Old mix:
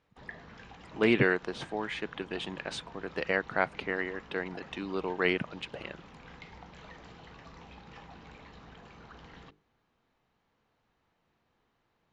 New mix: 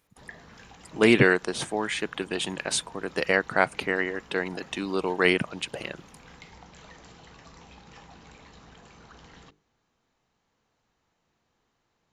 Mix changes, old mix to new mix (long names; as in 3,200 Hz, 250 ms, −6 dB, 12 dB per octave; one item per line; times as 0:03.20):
speech +6.0 dB
master: remove low-pass filter 3,700 Hz 12 dB per octave